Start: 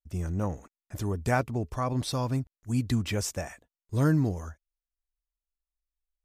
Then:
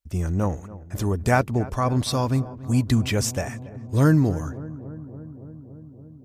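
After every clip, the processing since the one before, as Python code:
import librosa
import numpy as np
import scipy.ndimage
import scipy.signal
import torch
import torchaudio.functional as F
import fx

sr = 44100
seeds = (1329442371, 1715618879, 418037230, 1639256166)

y = fx.echo_filtered(x, sr, ms=283, feedback_pct=80, hz=1400.0, wet_db=-17.0)
y = y * librosa.db_to_amplitude(6.5)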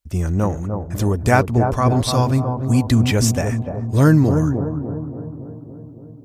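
y = fx.echo_bbd(x, sr, ms=300, stages=2048, feedback_pct=50, wet_db=-5.5)
y = y * librosa.db_to_amplitude(4.5)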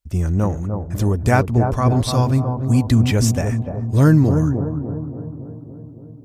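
y = fx.low_shelf(x, sr, hz=250.0, db=4.5)
y = y * librosa.db_to_amplitude(-2.5)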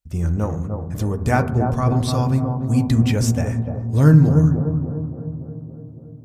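y = fx.rev_fdn(x, sr, rt60_s=0.76, lf_ratio=1.55, hf_ratio=0.25, size_ms=38.0, drr_db=7.5)
y = y * librosa.db_to_amplitude(-3.5)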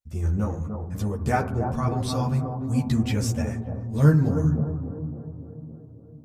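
y = fx.ensemble(x, sr)
y = y * librosa.db_to_amplitude(-2.0)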